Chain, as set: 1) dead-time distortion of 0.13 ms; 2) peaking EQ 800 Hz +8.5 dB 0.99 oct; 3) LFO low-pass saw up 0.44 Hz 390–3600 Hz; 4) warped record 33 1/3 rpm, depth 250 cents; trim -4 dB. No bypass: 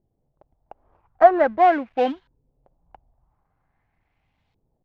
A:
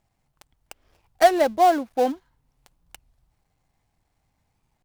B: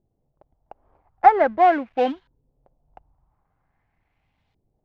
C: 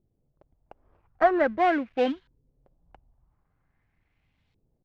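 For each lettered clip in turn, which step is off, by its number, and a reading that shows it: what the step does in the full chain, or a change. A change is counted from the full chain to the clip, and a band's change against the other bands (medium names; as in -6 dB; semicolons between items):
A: 3, 4 kHz band +9.0 dB; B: 4, 500 Hz band -3.0 dB; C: 2, 1 kHz band -6.5 dB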